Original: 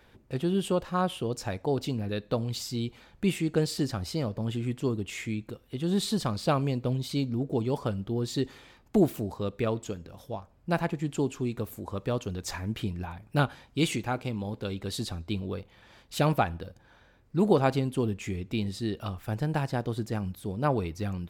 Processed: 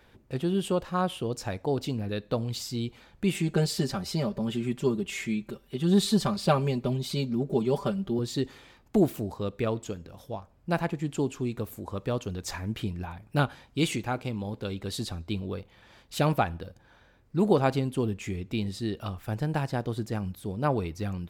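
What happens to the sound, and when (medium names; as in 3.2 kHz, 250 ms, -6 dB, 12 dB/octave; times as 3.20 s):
3.34–8.19 s: comb 5.1 ms, depth 88%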